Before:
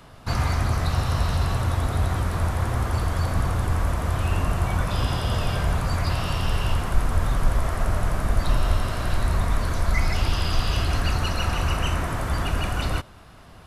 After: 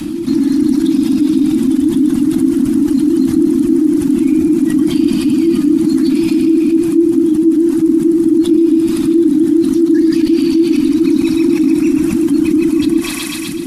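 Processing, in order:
reverb reduction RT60 1.5 s
on a send: feedback echo with a high-pass in the loop 125 ms, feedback 77%, high-pass 1,100 Hz, level −8.5 dB
on the sum: automatic gain control gain up to 7 dB
in parallel at −7 dB: hard clipping −16.5 dBFS, distortion −9 dB
on the sum: guitar amp tone stack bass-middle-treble 10-0-1
frequency shifter −350 Hz
high-shelf EQ 6,500 Hz +5.5 dB
envelope flattener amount 70%
level +4.5 dB

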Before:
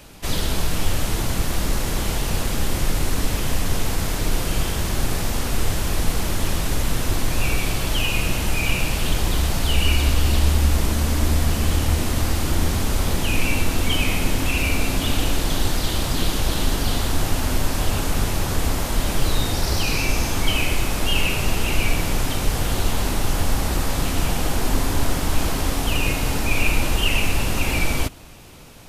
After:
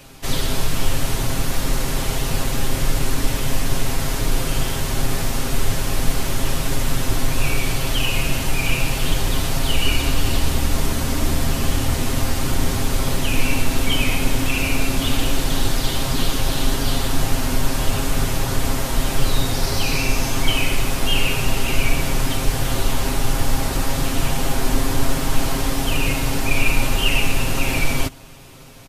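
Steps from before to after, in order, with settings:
comb filter 7.5 ms, depth 59%

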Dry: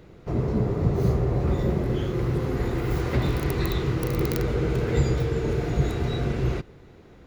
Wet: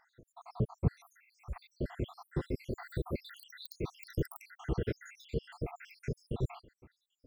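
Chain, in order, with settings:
time-frequency cells dropped at random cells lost 84%
0:00.95–0:01.56: guitar amp tone stack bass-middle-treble 10-0-10
level −5.5 dB

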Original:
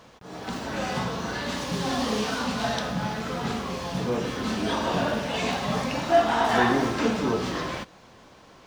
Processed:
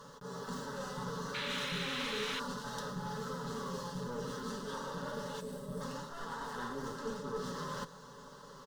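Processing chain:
asymmetric clip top −32.5 dBFS
comb filter 7 ms, depth 54%
reversed playback
downward compressor 6 to 1, threshold −36 dBFS, peak gain reduction 17 dB
reversed playback
gain on a spectral selection 0:05.40–0:05.81, 660–7,500 Hz −11 dB
phaser with its sweep stopped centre 470 Hz, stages 8
sound drawn into the spectrogram noise, 0:01.34–0:02.40, 1,200–4,200 Hz −41 dBFS
level +1 dB

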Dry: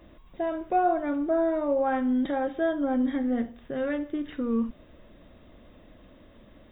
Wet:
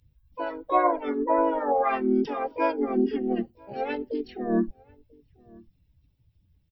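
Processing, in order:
spectral dynamics exaggerated over time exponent 2
pitch-shifted copies added −3 semitones −5 dB, +5 semitones −10 dB, +7 semitones 0 dB
slap from a distant wall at 170 metres, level −26 dB

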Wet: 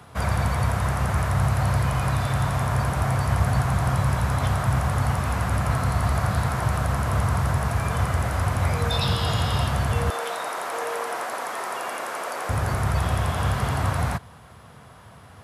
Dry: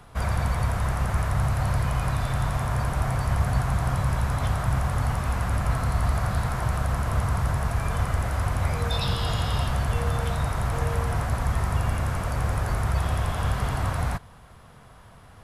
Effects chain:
high-pass filter 69 Hz 24 dB per octave, from 0:10.10 350 Hz, from 0:12.49 70 Hz
level +3.5 dB

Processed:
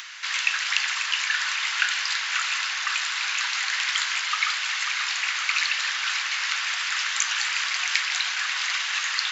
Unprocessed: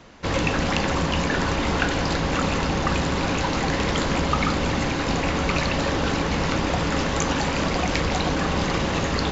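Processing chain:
inverse Chebyshev high-pass filter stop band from 260 Hz, stop band 80 dB
upward compression, threshold −34 dBFS
tape delay 542 ms, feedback 69%, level −7 dB, low-pass 2,400 Hz
level +4.5 dB

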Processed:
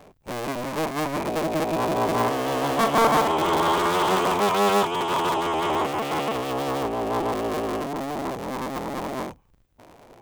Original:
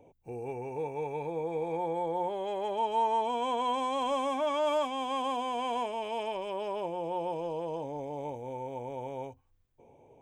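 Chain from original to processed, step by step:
sub-harmonics by changed cycles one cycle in 3, inverted
0:01.91–0:04.38: double-tracking delay 42 ms −8 dB
level +8.5 dB

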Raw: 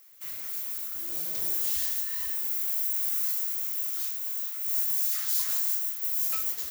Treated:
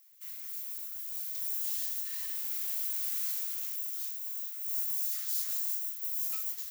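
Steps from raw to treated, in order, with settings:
0:02.05–0:03.76: each half-wave held at its own peak
guitar amp tone stack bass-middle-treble 5-5-5

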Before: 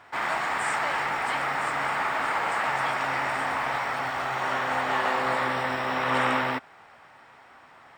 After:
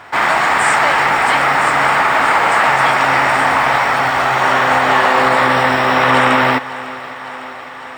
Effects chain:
on a send: feedback echo with a high-pass in the loop 553 ms, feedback 74%, high-pass 170 Hz, level −18.5 dB
on the sum: boost into a limiter +15.5 dB
level −1 dB

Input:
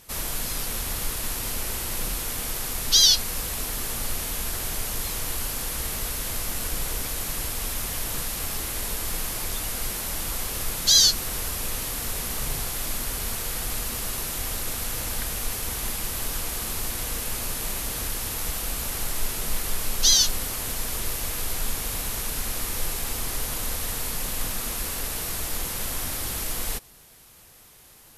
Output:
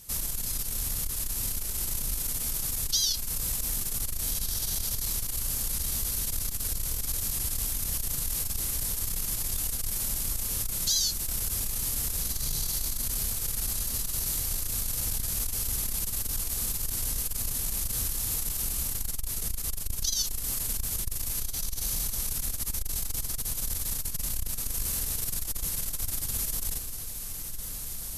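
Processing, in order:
bass and treble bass +10 dB, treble +12 dB
downward compressor 3 to 1, threshold −18 dBFS, peak gain reduction 10.5 dB
on a send: feedback delay with all-pass diffusion 1,660 ms, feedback 57%, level −8 dB
on the sum: saturating transformer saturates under 100 Hz
level −8 dB

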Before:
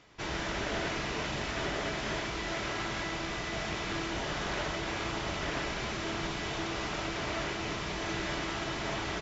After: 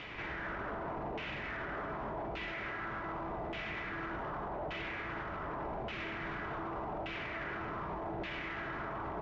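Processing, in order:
auto-filter low-pass saw down 0.85 Hz 710–2,800 Hz
brickwall limiter −44 dBFS, peak gain reduction 23.5 dB
level +11.5 dB

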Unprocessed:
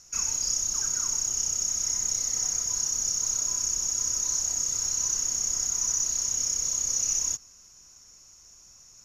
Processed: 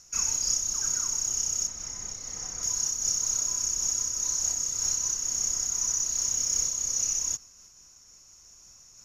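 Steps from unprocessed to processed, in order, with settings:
0:01.67–0:02.63: low-pass filter 2,500 Hz 6 dB per octave
0:06.14–0:06.60: background noise violet −66 dBFS
amplitude modulation by smooth noise, depth 55%
level +2.5 dB

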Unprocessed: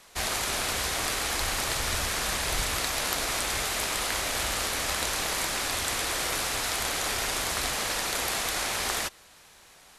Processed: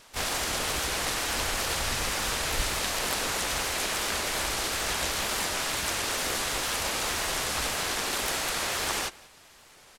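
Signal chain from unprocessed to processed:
pitch-shifted copies added −7 semitones −3 dB, −4 semitones −2 dB, +3 semitones −4 dB
tape wow and flutter 37 cents
slap from a distant wall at 32 metres, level −22 dB
level −4 dB

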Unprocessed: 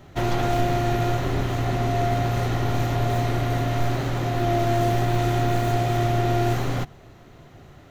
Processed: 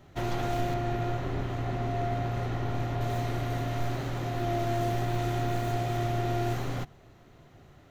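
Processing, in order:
0:00.74–0:03.01: high-shelf EQ 4,600 Hz −10 dB
level −7.5 dB

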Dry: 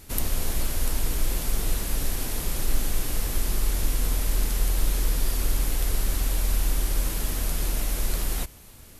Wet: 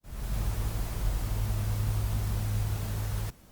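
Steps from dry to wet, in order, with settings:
fade in at the beginning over 0.94 s
change of speed 2.56×
level −7 dB
Opus 48 kbit/s 48,000 Hz

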